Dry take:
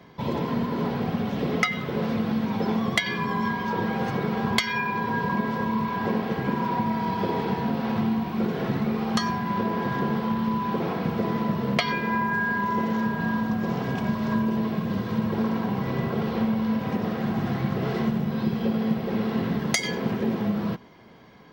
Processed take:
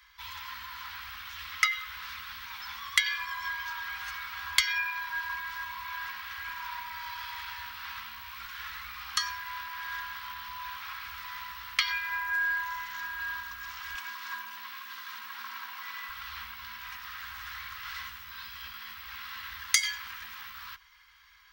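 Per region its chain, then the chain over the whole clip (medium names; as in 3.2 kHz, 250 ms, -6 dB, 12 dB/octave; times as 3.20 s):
13.94–16.09 s: steep high-pass 240 Hz 48 dB/octave + bass shelf 480 Hz +7.5 dB
whole clip: inverse Chebyshev band-stop 110–680 Hz, stop band 40 dB; treble shelf 6.2 kHz +8.5 dB; trim -1.5 dB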